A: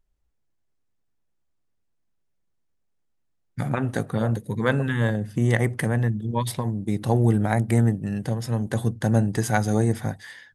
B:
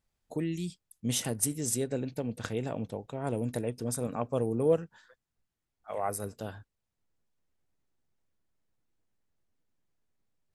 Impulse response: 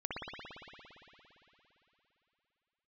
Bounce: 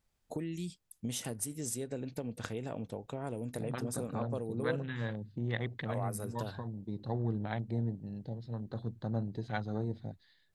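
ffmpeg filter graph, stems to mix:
-filter_complex "[0:a]afwtdn=0.0251,lowpass=frequency=4100:width_type=q:width=12,volume=-14.5dB[link_01];[1:a]acompressor=threshold=-38dB:ratio=4,volume=2dB[link_02];[link_01][link_02]amix=inputs=2:normalize=0"

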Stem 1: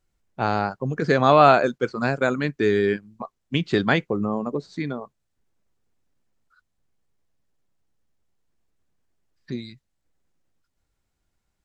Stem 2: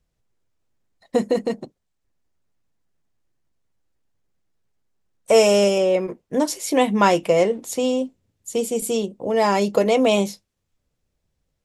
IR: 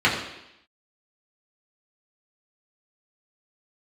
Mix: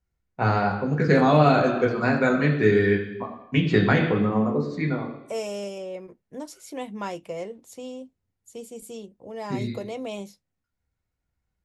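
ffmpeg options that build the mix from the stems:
-filter_complex "[0:a]agate=range=-9dB:threshold=-47dB:ratio=16:detection=peak,volume=-3.5dB,asplit=2[link_01][link_02];[link_02]volume=-15dB[link_03];[1:a]volume=-16.5dB[link_04];[2:a]atrim=start_sample=2205[link_05];[link_03][link_05]afir=irnorm=-1:irlink=0[link_06];[link_01][link_04][link_06]amix=inputs=3:normalize=0,acrossover=split=480|3000[link_07][link_08][link_09];[link_08]acompressor=threshold=-21dB:ratio=6[link_10];[link_07][link_10][link_09]amix=inputs=3:normalize=0,equalizer=frequency=62:width_type=o:width=1.6:gain=9.5"

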